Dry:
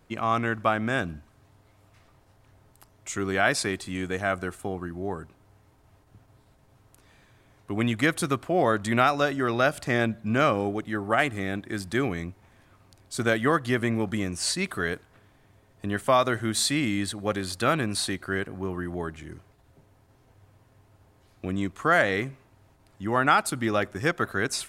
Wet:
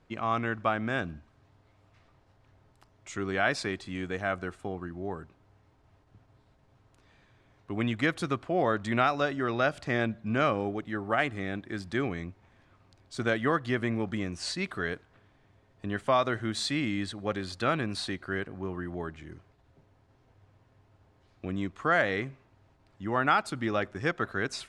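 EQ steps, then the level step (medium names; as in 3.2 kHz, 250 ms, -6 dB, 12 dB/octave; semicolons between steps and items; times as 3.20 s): low-pass 5.3 kHz 12 dB/octave; -4.0 dB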